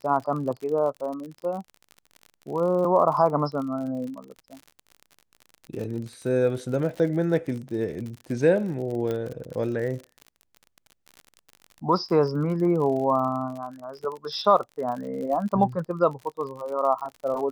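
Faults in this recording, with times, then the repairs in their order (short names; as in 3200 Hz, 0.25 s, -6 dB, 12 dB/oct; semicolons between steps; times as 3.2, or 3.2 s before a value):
crackle 49/s -33 dBFS
9.11 pop -18 dBFS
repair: de-click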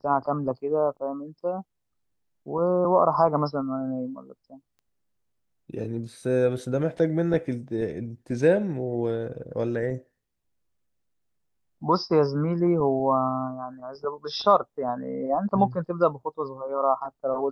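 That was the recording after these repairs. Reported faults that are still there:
none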